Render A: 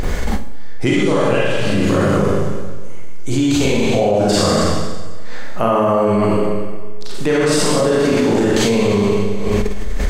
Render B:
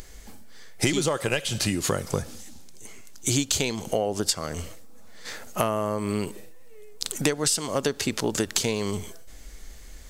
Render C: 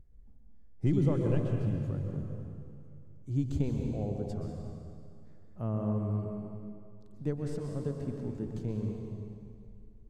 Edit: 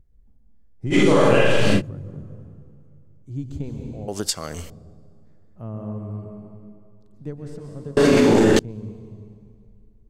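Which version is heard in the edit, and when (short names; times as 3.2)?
C
0.93–1.79 from A, crossfade 0.06 s
4.08–4.7 from B
7.97–8.59 from A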